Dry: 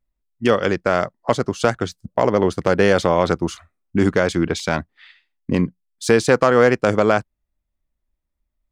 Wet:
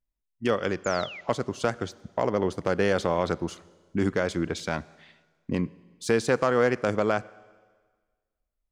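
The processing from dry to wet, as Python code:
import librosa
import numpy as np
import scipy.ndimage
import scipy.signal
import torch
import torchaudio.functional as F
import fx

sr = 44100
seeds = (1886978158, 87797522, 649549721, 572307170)

y = fx.spec_paint(x, sr, seeds[0], shape='fall', start_s=0.84, length_s=0.37, low_hz=1900.0, high_hz=7400.0, level_db=-32.0)
y = fx.rev_schroeder(y, sr, rt60_s=1.5, comb_ms=31, drr_db=20.0)
y = F.gain(torch.from_numpy(y), -8.5).numpy()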